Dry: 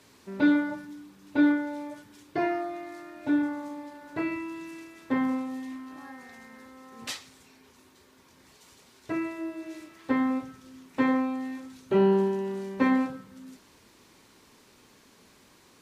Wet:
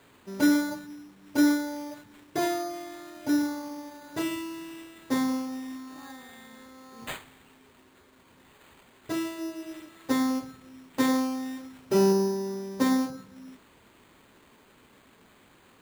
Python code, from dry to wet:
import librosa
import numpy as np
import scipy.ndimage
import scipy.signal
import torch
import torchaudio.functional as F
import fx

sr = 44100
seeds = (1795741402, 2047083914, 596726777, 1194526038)

y = fx.air_absorb(x, sr, metres=350.0, at=(12.12, 13.18))
y = np.repeat(y[::8], 8)[:len(y)]